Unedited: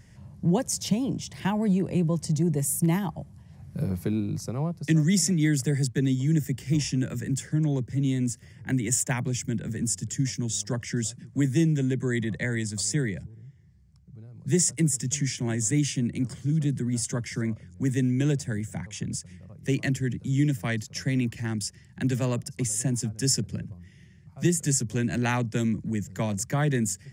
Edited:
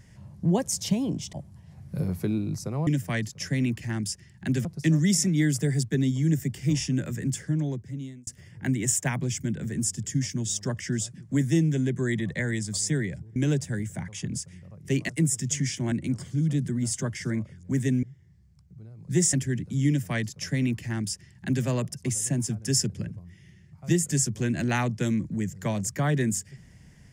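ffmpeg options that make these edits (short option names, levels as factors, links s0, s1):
-filter_complex "[0:a]asplit=10[s0][s1][s2][s3][s4][s5][s6][s7][s8][s9];[s0]atrim=end=1.332[s10];[s1]atrim=start=3.148:end=4.692[s11];[s2]atrim=start=20.418:end=22.202[s12];[s3]atrim=start=4.688:end=8.31,asetpts=PTS-STARTPTS,afade=t=out:st=2.752:d=0.87[s13];[s4]atrim=start=8.31:end=13.402,asetpts=PTS-STARTPTS,afade=t=in:d=0.004:c=hsin[s14];[s5]atrim=start=18.138:end=19.872[s15];[s6]atrim=start=14.698:end=15.532[s16];[s7]atrim=start=16.028:end=18.142[s17];[s8]atrim=start=13.398:end=14.702[s18];[s9]atrim=start=19.868[s19];[s10][s11]acrossfade=d=0.004:c1=hsin:c2=hsin[s20];[s20][s12]acrossfade=d=0.004:c1=hsin:c2=hsin[s21];[s13][s14]concat=n=2:v=0:a=1[s22];[s21][s22]acrossfade=d=0.004:c1=hsin:c2=hsin[s23];[s23][s15]acrossfade=d=0.004:c1=hsin:c2=hsin[s24];[s24][s16]acrossfade=d=0.004:c1=hsin:c2=hsin[s25];[s25][s17]acrossfade=d=0.004:c1=hsin:c2=hsin[s26];[s26][s18]acrossfade=d=0.004:c1=hsin:c2=hsin[s27];[s27][s19]acrossfade=d=0.004:c1=hsin:c2=hsin"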